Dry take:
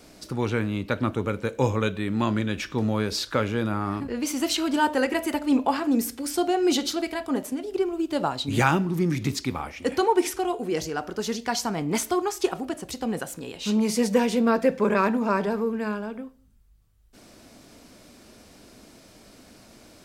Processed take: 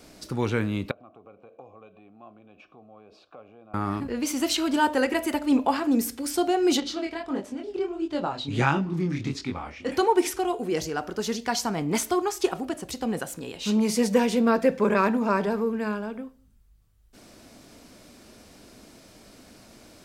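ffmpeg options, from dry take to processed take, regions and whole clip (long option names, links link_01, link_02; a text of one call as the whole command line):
ffmpeg -i in.wav -filter_complex "[0:a]asettb=1/sr,asplit=3[link_01][link_02][link_03];[link_01]atrim=end=0.914[link_04];[link_02]atrim=start=0.91:end=3.74,asetpts=PTS-STARTPTS,afade=type=in:duration=0.004:curve=qsin,afade=type=out:start_time=2.826:duration=0.004:curve=qsin,tiltshelf=frequency=630:gain=7.5,acompressor=threshold=-26dB:ratio=5:attack=3.2:release=140:knee=1:detection=peak,asplit=3[link_05][link_06][link_07];[link_05]bandpass=frequency=730:width_type=q:width=8,volume=0dB[link_08];[link_06]bandpass=frequency=1090:width_type=q:width=8,volume=-6dB[link_09];[link_07]bandpass=frequency=2440:width_type=q:width=8,volume=-9dB[link_10];[link_08][link_09][link_10]amix=inputs=3:normalize=0[link_11];[link_03]atrim=start=3.736[link_12];[link_04][link_11]acrossfade=duration=0.004:curve1=hsin:curve2=qsin[link_13];[link_13][link_12]acrossfade=duration=0.004:curve1=qsin:curve2=hsin,asettb=1/sr,asplit=3[link_14][link_15][link_16];[link_14]atrim=end=6.804[link_17];[link_15]atrim=start=6.8:end=9.91,asetpts=PTS-STARTPTS,afade=type=in:duration=0.004:curve=qsin,afade=type=out:start_time=3.106:duration=0.004:curve=qsin,lowpass=5500,flanger=delay=20:depth=8:speed=1.5[link_18];[link_16]atrim=start=9.906[link_19];[link_17][link_18]acrossfade=duration=0.004:curve1=hsin:curve2=qsin[link_20];[link_20][link_19]acrossfade=duration=0.004:curve1=qsin:curve2=hsin" out.wav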